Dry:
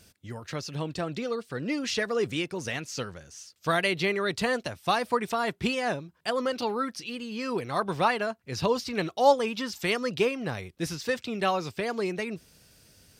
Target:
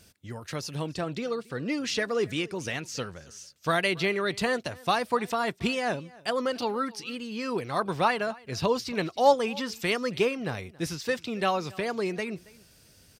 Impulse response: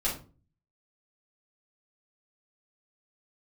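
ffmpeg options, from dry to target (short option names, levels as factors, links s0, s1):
-filter_complex "[0:a]asettb=1/sr,asplit=3[s0][s1][s2];[s0]atrim=end=0.414[s3];[s1]atrim=start=0.41:end=0.87,asetpts=PTS-STARTPTS,afade=t=in:d=0.004:c=qsin,afade=t=out:st=0.456:d=0.004:c=qsin,equalizer=f=11000:t=o:w=0.67:g=10.5[s4];[s2]atrim=start=0.866[s5];[s3][s4]acrossfade=d=0.004:c1=hsin:c2=qsin[s6];[s6][s5]acrossfade=d=0.004:c1=qsin:c2=hsin,aecho=1:1:276:0.0708"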